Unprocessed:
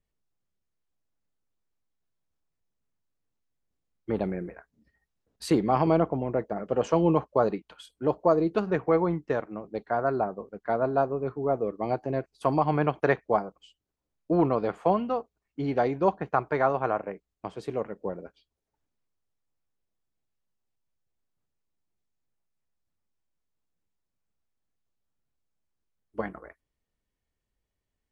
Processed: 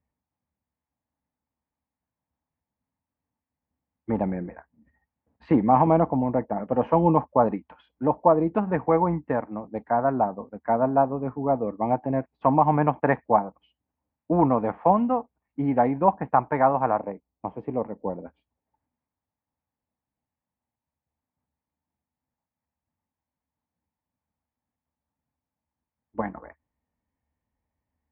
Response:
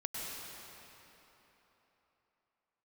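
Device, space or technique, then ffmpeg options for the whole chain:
bass cabinet: -filter_complex "[0:a]asettb=1/sr,asplit=3[s0][s1][s2];[s0]atrim=end=16.984[s3];[s1]atrim=start=16.98:end=18.22,asetpts=PTS-STARTPTS,afade=t=in:d=0.004:c=qsin,afade=t=out:st=1.236:d=0.004:c=qsin,equalizer=f=400:t=o:w=0.67:g=3,equalizer=f=1600:t=o:w=0.67:g=-8,equalizer=f=4000:t=o:w=0.67:g=-12[s4];[s2]atrim=start=18.216[s5];[s3][s4]acrossfade=d=0.004:c1=hsin:c2=qsin[s6];[s6][s5]acrossfade=d=0.004:c1=qsin:c2=hsin,highpass=66,equalizer=f=75:t=q:w=4:g=8,equalizer=f=250:t=q:w=4:g=7,equalizer=f=390:t=q:w=4:g=-9,equalizer=f=880:t=q:w=4:g=8,equalizer=f=1400:t=q:w=4:g=-6,lowpass=f=2100:w=0.5412,lowpass=f=2100:w=1.3066,volume=1.41"

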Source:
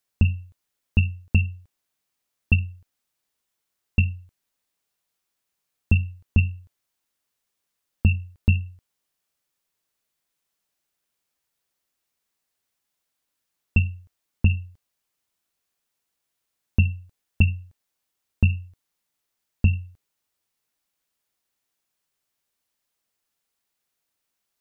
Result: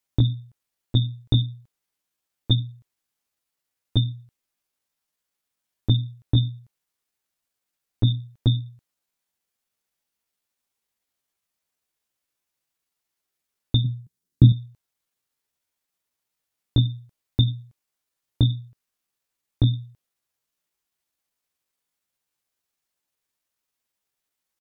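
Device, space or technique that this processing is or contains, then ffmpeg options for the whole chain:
chipmunk voice: -filter_complex "[0:a]asettb=1/sr,asplit=3[s0][s1][s2];[s0]atrim=end=13.854[s3];[s1]atrim=start=13.85:end=14.53,asetpts=PTS-STARTPTS,afade=t=in:d=0.004:c=qsin,afade=t=out:st=0.676:d=0.004:c=qsin,equalizer=f=125:t=o:w=1:g=12,equalizer=f=250:t=o:w=1:g=4,equalizer=f=500:t=o:w=1:g=-9,equalizer=f=1000:t=o:w=1:g=-5,equalizer=f=2000:t=o:w=1:g=-6[s4];[s2]atrim=start=14.526[s5];[s3][s4]acrossfade=d=0.004:c1=hsin:c2=qsin[s6];[s6][s5]acrossfade=d=0.004:c1=qsin:c2=hsin,asetrate=58866,aresample=44100,atempo=0.749154,volume=0.891"

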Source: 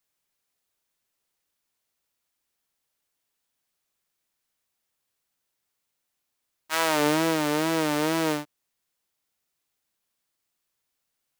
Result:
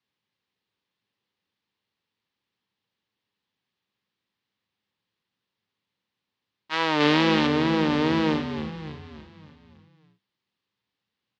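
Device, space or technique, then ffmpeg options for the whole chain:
frequency-shifting delay pedal into a guitar cabinet: -filter_complex "[0:a]asplit=7[s0][s1][s2][s3][s4][s5][s6];[s1]adelay=289,afreqshift=-79,volume=0.316[s7];[s2]adelay=578,afreqshift=-158,volume=0.168[s8];[s3]adelay=867,afreqshift=-237,volume=0.0891[s9];[s4]adelay=1156,afreqshift=-316,volume=0.0473[s10];[s5]adelay=1445,afreqshift=-395,volume=0.0248[s11];[s6]adelay=1734,afreqshift=-474,volume=0.0132[s12];[s0][s7][s8][s9][s10][s11][s12]amix=inputs=7:normalize=0,highpass=87,equalizer=f=110:t=q:w=4:g=7,equalizer=f=200:t=q:w=4:g=7,equalizer=f=660:t=q:w=4:g=-10,equalizer=f=1400:t=q:w=4:g=-6,equalizer=f=2300:t=q:w=4:g=-3,lowpass=f=4100:w=0.5412,lowpass=f=4100:w=1.3066,asettb=1/sr,asplit=3[s13][s14][s15];[s13]atrim=end=7.004[s16];[s14]atrim=start=7:end=7.47,asetpts=PTS-STARTPTS,afade=t=in:d=0.004:c=qsin,afade=t=out:st=0.466:d=0.004:c=qsin,equalizer=f=3700:w=0.39:g=5.5[s17];[s15]atrim=start=7.466[s18];[s16][s17]acrossfade=d=0.004:c1=hsin:c2=qsin[s19];[s19][s18]acrossfade=d=0.004:c1=qsin:c2=hsin,volume=1.41"

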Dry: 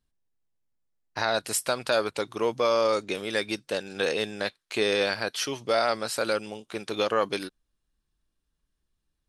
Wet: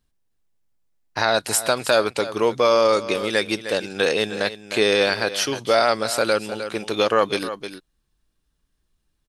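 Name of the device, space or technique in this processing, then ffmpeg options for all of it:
ducked delay: -filter_complex "[0:a]asplit=3[s0][s1][s2];[s1]adelay=308,volume=0.355[s3];[s2]apad=whole_len=422914[s4];[s3][s4]sidechaincompress=threshold=0.0501:ratio=8:attack=6.7:release=469[s5];[s0][s5]amix=inputs=2:normalize=0,volume=2.11"

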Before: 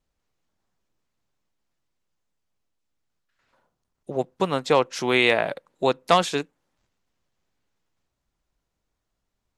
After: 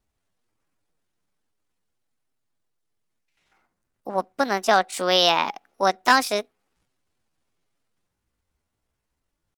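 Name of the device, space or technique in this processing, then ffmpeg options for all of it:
chipmunk voice: -af "asetrate=64194,aresample=44100,atempo=0.686977,volume=1.12"

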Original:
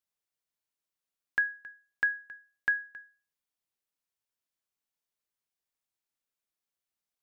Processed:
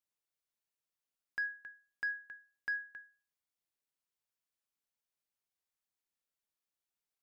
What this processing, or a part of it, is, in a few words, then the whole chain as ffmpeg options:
soft clipper into limiter: -af "asoftclip=type=tanh:threshold=0.106,alimiter=level_in=1.41:limit=0.0631:level=0:latency=1,volume=0.708,volume=0.668"

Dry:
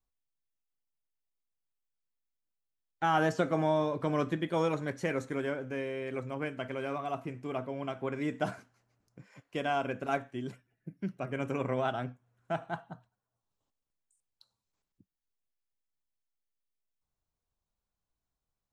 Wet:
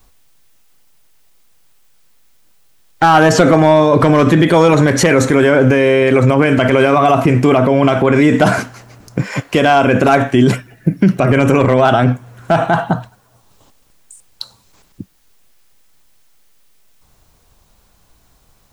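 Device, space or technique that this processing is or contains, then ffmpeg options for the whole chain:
loud club master: -af "acompressor=threshold=0.0158:ratio=1.5,asoftclip=type=hard:threshold=0.0531,alimiter=level_in=63.1:limit=0.891:release=50:level=0:latency=1,volume=0.891"

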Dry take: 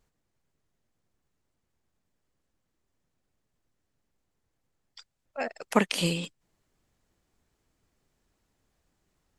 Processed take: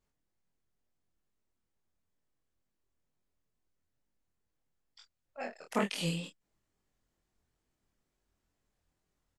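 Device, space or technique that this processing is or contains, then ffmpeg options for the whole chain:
double-tracked vocal: -filter_complex "[0:a]asplit=2[s0][s1];[s1]adelay=25,volume=0.631[s2];[s0][s2]amix=inputs=2:normalize=0,flanger=delay=19.5:depth=4.9:speed=2.2,volume=0.501"

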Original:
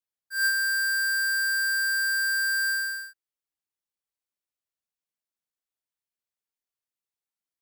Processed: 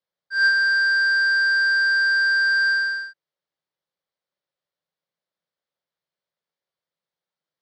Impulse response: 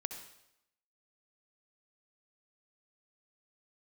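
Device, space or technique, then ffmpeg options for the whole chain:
guitar cabinet: -filter_complex "[0:a]highpass=77,equalizer=f=97:t=q:w=4:g=-9,equalizer=f=160:t=q:w=4:g=8,equalizer=f=260:t=q:w=4:g=-7,equalizer=f=550:t=q:w=4:g=9,equalizer=f=2600:t=q:w=4:g=-7,lowpass=f=4600:w=0.5412,lowpass=f=4600:w=1.3066,asettb=1/sr,asplit=3[s0][s1][s2];[s0]atrim=end=0.784[s3];[s1]atrim=start=0.78:end=2.46,asetpts=PTS-STARTPTS,afade=t=in:d=0.004:c=qsin,afade=t=out:st=1.676:d=0.004:c=qsin,highpass=f=220:w=0.5412,highpass=f=220:w=1.3066[s4];[s2]atrim=start=2.456[s5];[s3][s4]acrossfade=d=0.004:c1=hsin:c2=qsin[s6];[s6][s5]acrossfade=d=0.004:c1=qsin:c2=hsin,volume=2.37"

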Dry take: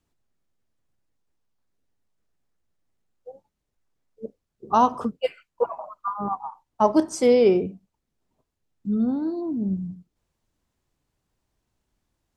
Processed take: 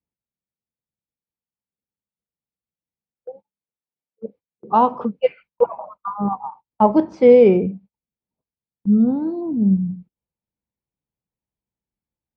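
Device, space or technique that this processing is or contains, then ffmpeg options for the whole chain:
guitar cabinet: -filter_complex "[0:a]highpass=90,equalizer=f=92:t=q:w=4:g=-7,equalizer=f=200:t=q:w=4:g=6,equalizer=f=500:t=q:w=4:g=7,equalizer=f=870:t=q:w=4:g=6,equalizer=f=2300:t=q:w=4:g=7,lowpass=f=4300:w=0.5412,lowpass=f=4300:w=1.3066,aemphasis=mode=reproduction:type=bsi,agate=range=0.112:threshold=0.01:ratio=16:detection=peak,asettb=1/sr,asplit=3[s0][s1][s2];[s0]atrim=end=3.294[s3];[s1]atrim=start=3.29:end=5.18,asetpts=PTS-STARTPTS,afade=t=in:d=0.004:c=qsin,afade=t=out:st=1.886:d=0.004:c=qsin,highpass=f=260:p=1[s4];[s2]atrim=start=5.176[s5];[s3][s4]acrossfade=d=0.004:c1=hsin:c2=qsin[s6];[s6][s5]acrossfade=d=0.004:c1=qsin:c2=hsin,volume=0.891"

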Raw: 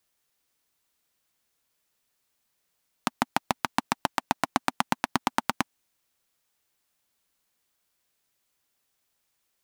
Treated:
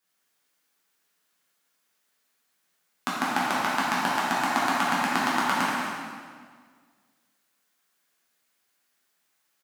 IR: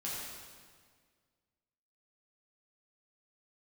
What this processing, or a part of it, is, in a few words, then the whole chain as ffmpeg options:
stadium PA: -filter_complex "[0:a]highpass=180,equalizer=f=1600:t=o:w=0.84:g=5,aecho=1:1:189.5|236.2:0.316|0.282[s0];[1:a]atrim=start_sample=2205[s1];[s0][s1]afir=irnorm=-1:irlink=0"

